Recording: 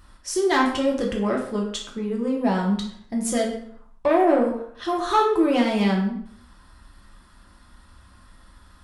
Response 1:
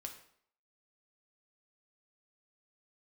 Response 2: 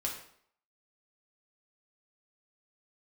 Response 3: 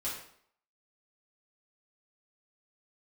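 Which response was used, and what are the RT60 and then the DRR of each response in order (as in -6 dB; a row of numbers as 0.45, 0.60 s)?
2; 0.60, 0.60, 0.60 s; 3.0, -1.5, -8.0 dB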